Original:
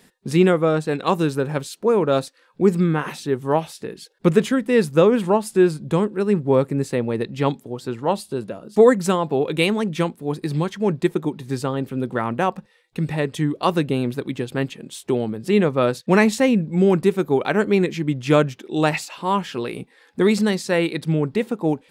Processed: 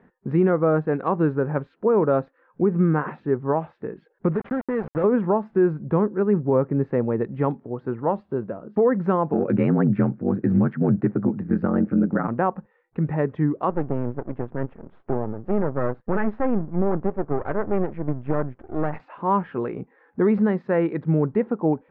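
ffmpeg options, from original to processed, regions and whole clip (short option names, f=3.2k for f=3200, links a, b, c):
-filter_complex "[0:a]asettb=1/sr,asplit=3[a][b][c];[a]atrim=end=4.354[d];[b]atrim=start=4.35:end=5.04,asetpts=PTS-STARTPTS,afade=t=in:d=0.004:c=qsin,afade=t=out:st=0.686:d=0.004:c=qsin,acompressor=threshold=-21dB:ratio=4:attack=3.2:release=140:knee=1:detection=peak,aeval=exprs='val(0)*gte(abs(val(0)),0.0473)':c=same[e];[c]atrim=start=5.036[f];[d][e]acrossfade=d=0.004:c1=hsin:c2=qsin[g];[g][f]acrossfade=d=0.004:c1=qsin:c2=hsin,asettb=1/sr,asplit=3[h][i][j];[h]atrim=end=9.334[k];[i]atrim=start=9.33:end=12.28,asetpts=PTS-STARTPTS,afade=t=in:d=0.004:c=qsin,afade=t=out:st=2.946:d=0.004:c=qsin,acontrast=47,aeval=exprs='val(0)*sin(2*PI*46*n/s)':c=same,highpass=f=110:w=0.5412,highpass=f=110:w=1.3066,equalizer=f=130:t=q:w=4:g=8,equalizer=f=210:t=q:w=4:g=9,equalizer=f=430:t=q:w=4:g=-3,equalizer=f=990:t=q:w=4:g=-8,equalizer=f=1.5k:t=q:w=4:g=4,equalizer=f=3.4k:t=q:w=4:g=-10,lowpass=f=5.2k:w=0.5412,lowpass=f=5.2k:w=1.3066[l];[j]atrim=start=12.276[m];[k][l]acrossfade=d=0.004:c1=hsin:c2=qsin[n];[n][m]acrossfade=d=0.004:c1=qsin:c2=hsin,asettb=1/sr,asplit=3[o][p][q];[o]atrim=end=13.704[r];[p]atrim=start=13.7:end=19,asetpts=PTS-STARTPTS,afade=t=in:d=0.004:c=qsin,afade=t=out:st=5.296:d=0.004:c=qsin,highshelf=f=2.7k:g=-9,aeval=exprs='max(val(0),0)':c=same[s];[q]atrim=start=18.996[t];[r][s]acrossfade=d=0.004:c1=hsin:c2=qsin[u];[u][t]acrossfade=d=0.004:c1=qsin:c2=hsin,lowpass=f=1.6k:w=0.5412,lowpass=f=1.6k:w=1.3066,alimiter=limit=-11dB:level=0:latency=1:release=83"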